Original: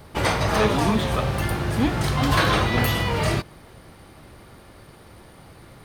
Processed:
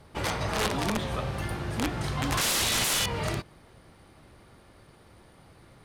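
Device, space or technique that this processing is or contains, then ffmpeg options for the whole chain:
overflowing digital effects unit: -filter_complex "[0:a]asettb=1/sr,asplit=3[link_01][link_02][link_03];[link_01]atrim=end=2.414[link_04];[link_02]atrim=start=2.41:end=3.06,asetpts=PTS-STARTPTS,afade=type=in:duration=0.004:curve=qsin,afade=type=out:start_time=0.646:duration=0.004:curve=qsin,highshelf=frequency=2200:width_type=q:width=1.5:gain=14[link_05];[link_03]atrim=start=3.056[link_06];[link_04][link_05]acrossfade=duration=0.004:curve1=hsin:curve2=qsin[link_07];[link_07][link_06]acrossfade=duration=0.004:curve1=qsin:curve2=hsin,aeval=exprs='(mod(3.76*val(0)+1,2)-1)/3.76':channel_layout=same,lowpass=12000,volume=-8dB"

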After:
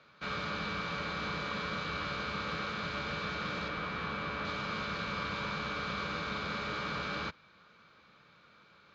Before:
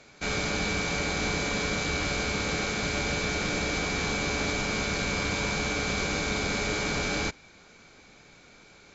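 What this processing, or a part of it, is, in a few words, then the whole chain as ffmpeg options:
guitar cabinet: -filter_complex "[0:a]highpass=100,equalizer=frequency=110:width_type=q:width=4:gain=-4,equalizer=frequency=270:width_type=q:width=4:gain=-9,equalizer=frequency=390:width_type=q:width=4:gain=-8,equalizer=frequency=750:width_type=q:width=4:gain=-9,equalizer=frequency=1200:width_type=q:width=4:gain=9,equalizer=frequency=2200:width_type=q:width=4:gain=-6,lowpass=frequency=4000:width=0.5412,lowpass=frequency=4000:width=1.3066,asettb=1/sr,asplit=3[link_01][link_02][link_03];[link_01]atrim=end=3.684[link_04];[link_02]atrim=start=3.68:end=4.45,asetpts=PTS-STARTPTS,afade=type=in:duration=0.004:curve=qsin,afade=type=out:start_time=0.766:duration=0.004:curve=qsin,acrossover=split=3400[link_05][link_06];[link_06]acompressor=threshold=-50dB:ratio=4:attack=1:release=60[link_07];[link_05][link_07]amix=inputs=2:normalize=0[link_08];[link_03]atrim=start=4.446[link_09];[link_04][link_08]acrossfade=duration=0.004:curve1=hsin:curve2=qsin[link_10];[link_10][link_09]acrossfade=duration=0.004:curve1=qsin:curve2=hsin,volume=-5dB"

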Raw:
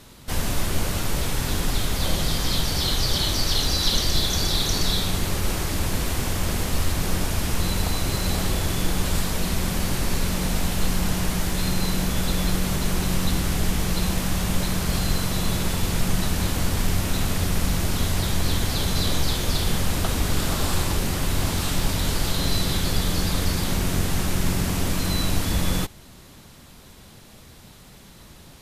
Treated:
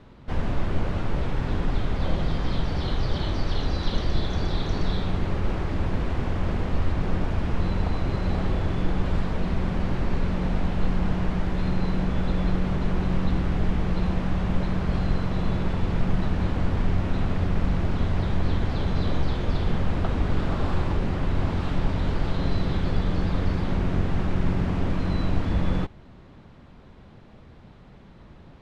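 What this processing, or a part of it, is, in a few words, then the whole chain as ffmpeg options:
phone in a pocket: -af "lowpass=3200,highshelf=frequency=2100:gain=-12"

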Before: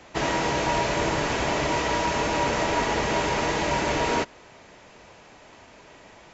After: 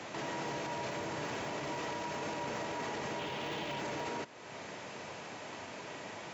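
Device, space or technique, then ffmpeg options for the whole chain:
podcast mastering chain: -filter_complex "[0:a]asettb=1/sr,asplit=3[link_01][link_02][link_03];[link_01]atrim=end=3.194[link_04];[link_02]atrim=start=3.19:end=3.8,asetpts=PTS-STARTPTS,afade=type=in:duration=0.004:curve=qsin,afade=type=out:start_time=0.606:duration=0.004:curve=qsin,equalizer=frequency=3200:width=1.6:gain=12[link_05];[link_03]atrim=start=3.796[link_06];[link_04][link_05]acrossfade=duration=0.004:curve1=hsin:curve2=qsin[link_07];[link_07][link_06]acrossfade=duration=0.004:curve1=qsin:curve2=hsin,highpass=frequency=100:width=0.5412,highpass=frequency=100:width=1.3066,deesser=0.85,acompressor=threshold=-43dB:ratio=2,alimiter=level_in=11dB:limit=-24dB:level=0:latency=1:release=35,volume=-11dB,volume=5dB" -ar 44100 -c:a libmp3lame -b:a 96k

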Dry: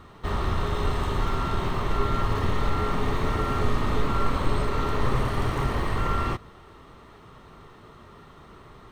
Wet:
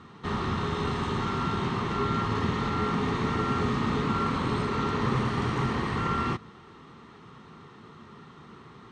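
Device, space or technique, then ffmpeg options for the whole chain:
car door speaker: -af "highpass=110,equalizer=frequency=150:width_type=q:width=4:gain=4,equalizer=frequency=220:width_type=q:width=4:gain=6,equalizer=frequency=610:width_type=q:width=4:gain=-10,lowpass=frequency=7400:width=0.5412,lowpass=frequency=7400:width=1.3066"

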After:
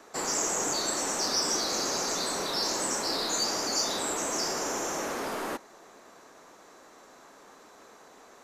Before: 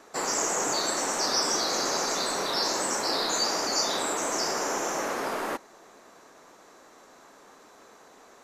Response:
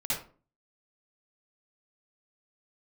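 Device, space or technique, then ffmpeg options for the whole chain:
one-band saturation: -filter_complex "[0:a]acrossover=split=380|4500[link_01][link_02][link_03];[link_02]asoftclip=type=tanh:threshold=-31.5dB[link_04];[link_01][link_04][link_03]amix=inputs=3:normalize=0"

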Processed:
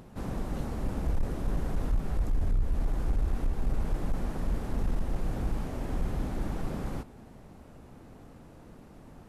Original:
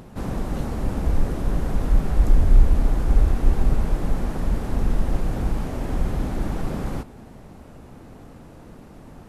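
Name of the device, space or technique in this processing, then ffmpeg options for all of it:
limiter into clipper: -af "alimiter=limit=-9.5dB:level=0:latency=1:release=316,asoftclip=type=hard:threshold=-14.5dB,volume=-7dB"

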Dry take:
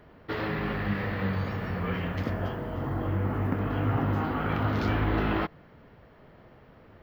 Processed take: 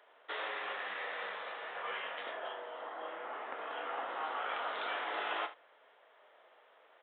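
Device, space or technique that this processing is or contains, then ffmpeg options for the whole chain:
musical greeting card: -filter_complex "[0:a]asettb=1/sr,asplit=3[link_01][link_02][link_03];[link_01]atrim=end=1.734[link_04];[link_02]atrim=start=1.73:end=2.39,asetpts=PTS-STARTPTS,afade=type=in:duration=0.004:curve=qsin,afade=type=out:start_time=0.656:duration=0.004:curve=qsin,asplit=2[link_05][link_06];[link_06]adelay=21,volume=-5dB[link_07];[link_05][link_07]amix=inputs=2:normalize=0,atrim=end_sample=29106[link_08];[link_03]atrim=start=2.386[link_09];[link_04][link_08]acrossfade=duration=0.004:curve1=hsin:curve2=qsin[link_10];[link_10][link_09]acrossfade=duration=0.004:curve1=qsin:curve2=hsin,aresample=8000,aresample=44100,highpass=frequency=550:width=0.5412,highpass=frequency=550:width=1.3066,equalizer=frequency=3700:width_type=o:width=0.53:gain=8.5,aecho=1:1:33|74:0.266|0.178,volume=-5dB"

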